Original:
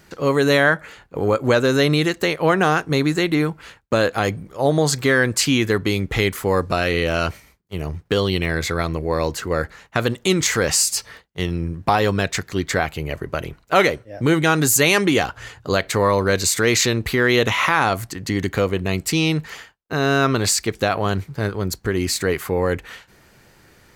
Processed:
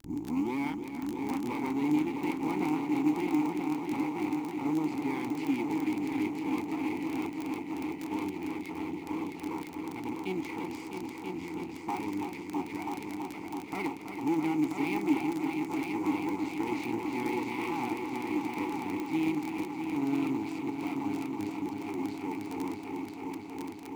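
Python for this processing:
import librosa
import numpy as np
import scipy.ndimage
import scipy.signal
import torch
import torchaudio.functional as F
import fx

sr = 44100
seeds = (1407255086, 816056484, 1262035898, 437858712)

p1 = fx.tape_start_head(x, sr, length_s=0.58)
p2 = fx.high_shelf(p1, sr, hz=7400.0, db=-8.5)
p3 = p2 + fx.echo_heads(p2, sr, ms=328, heads='all three', feedback_pct=71, wet_db=-9, dry=0)
p4 = np.maximum(p3, 0.0)
p5 = fx.vowel_filter(p4, sr, vowel='u')
p6 = fx.sample_hold(p5, sr, seeds[0], rate_hz=6900.0, jitter_pct=20)
p7 = p5 + (p6 * 10.0 ** (-11.0 / 20.0))
p8 = fx.dmg_crackle(p7, sr, seeds[1], per_s=21.0, level_db=-27.0)
y = p8 * 10.0 ** (-1.0 / 20.0)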